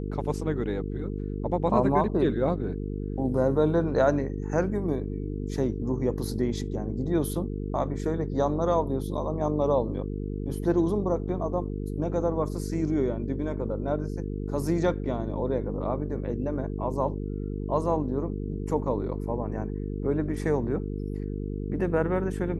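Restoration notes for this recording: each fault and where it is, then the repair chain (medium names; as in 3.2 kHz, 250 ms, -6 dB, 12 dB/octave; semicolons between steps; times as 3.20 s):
buzz 50 Hz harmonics 9 -32 dBFS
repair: de-hum 50 Hz, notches 9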